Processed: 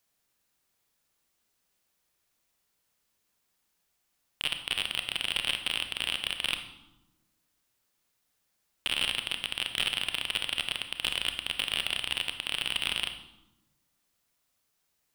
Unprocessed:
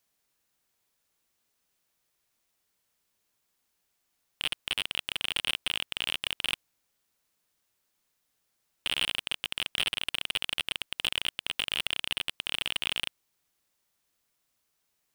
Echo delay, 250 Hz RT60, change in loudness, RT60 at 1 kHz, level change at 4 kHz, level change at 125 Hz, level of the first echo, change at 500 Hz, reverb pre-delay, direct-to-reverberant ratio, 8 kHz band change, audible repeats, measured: none, 1.5 s, +0.5 dB, 0.95 s, +0.5 dB, +2.0 dB, none, +0.5 dB, 27 ms, 7.0 dB, +0.5 dB, none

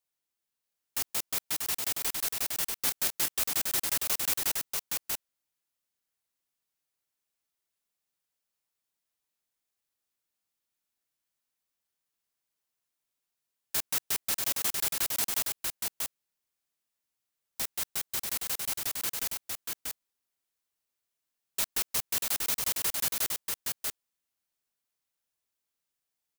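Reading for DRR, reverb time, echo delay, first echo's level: none, none, 0.638 s, -3.5 dB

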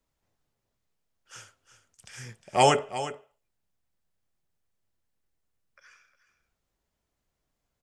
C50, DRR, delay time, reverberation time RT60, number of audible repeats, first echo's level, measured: none, none, 0.357 s, none, 1, -13.0 dB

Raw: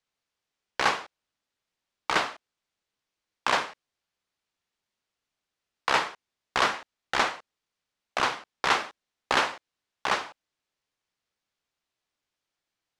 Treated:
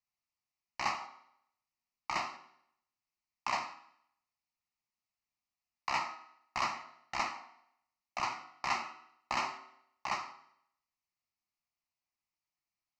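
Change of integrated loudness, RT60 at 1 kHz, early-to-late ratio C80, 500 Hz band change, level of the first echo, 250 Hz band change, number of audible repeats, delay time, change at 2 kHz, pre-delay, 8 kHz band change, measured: -9.5 dB, 0.70 s, 13.0 dB, -14.5 dB, none, -11.5 dB, none, none, -11.5 dB, 6 ms, -9.0 dB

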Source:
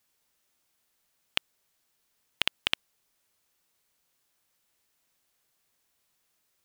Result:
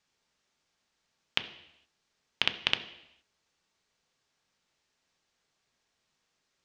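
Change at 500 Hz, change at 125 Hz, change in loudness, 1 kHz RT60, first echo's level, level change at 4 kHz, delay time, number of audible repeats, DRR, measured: +1.5 dB, +1.5 dB, +0.5 dB, 0.85 s, none, +0.5 dB, none, none, 7.5 dB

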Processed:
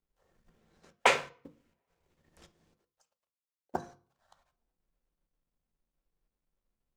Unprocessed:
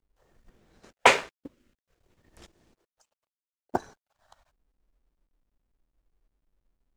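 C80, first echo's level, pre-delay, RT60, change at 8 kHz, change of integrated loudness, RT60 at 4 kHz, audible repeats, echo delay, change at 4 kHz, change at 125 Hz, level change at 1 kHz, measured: 23.0 dB, none, 3 ms, 0.45 s, -6.0 dB, -6.0 dB, 0.35 s, none, none, -5.5 dB, -5.0 dB, -6.0 dB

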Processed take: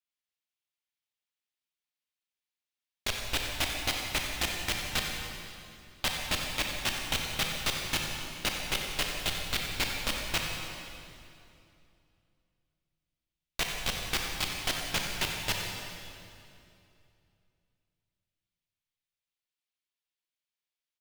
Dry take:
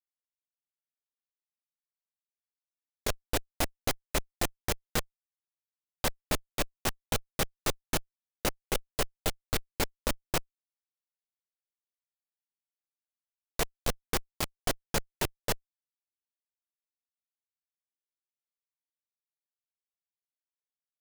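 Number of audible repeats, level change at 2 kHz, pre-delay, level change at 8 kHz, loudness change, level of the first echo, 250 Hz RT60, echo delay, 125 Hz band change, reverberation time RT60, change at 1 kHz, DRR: 1, +5.5 dB, 26 ms, +0.5 dB, +2.0 dB, -11.0 dB, 3.0 s, 91 ms, -1.5 dB, 2.7 s, -0.5 dB, 0.5 dB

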